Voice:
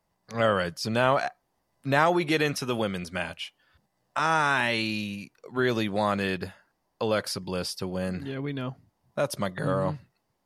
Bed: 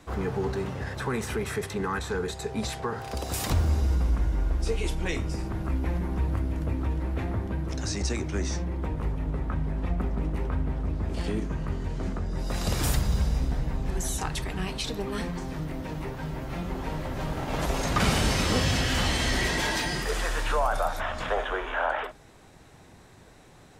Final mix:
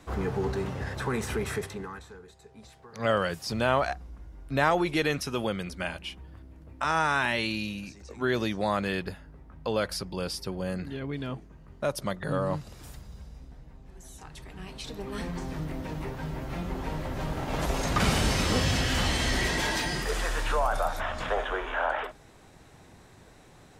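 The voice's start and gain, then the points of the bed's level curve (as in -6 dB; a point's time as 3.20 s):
2.65 s, -2.0 dB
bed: 1.55 s -0.5 dB
2.23 s -20 dB
13.91 s -20 dB
15.38 s -1 dB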